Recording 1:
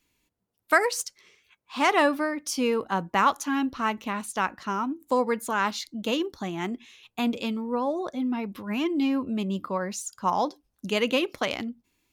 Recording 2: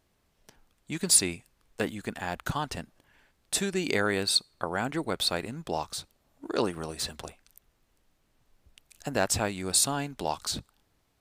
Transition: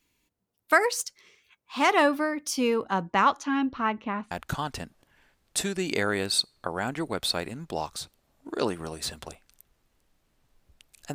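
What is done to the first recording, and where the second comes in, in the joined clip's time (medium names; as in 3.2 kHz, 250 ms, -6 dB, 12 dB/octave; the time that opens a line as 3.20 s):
recording 1
2.73–4.31 s: low-pass 11 kHz -> 1.6 kHz
4.31 s: go over to recording 2 from 2.28 s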